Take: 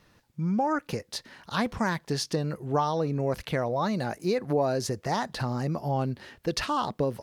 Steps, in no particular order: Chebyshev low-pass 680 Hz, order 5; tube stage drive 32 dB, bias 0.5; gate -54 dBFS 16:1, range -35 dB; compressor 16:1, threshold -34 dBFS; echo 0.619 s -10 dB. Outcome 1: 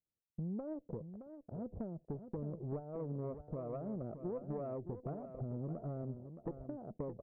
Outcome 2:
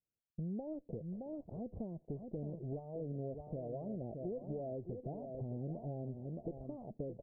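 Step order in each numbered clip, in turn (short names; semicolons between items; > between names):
compressor > Chebyshev low-pass > tube stage > gate > echo; echo > compressor > tube stage > gate > Chebyshev low-pass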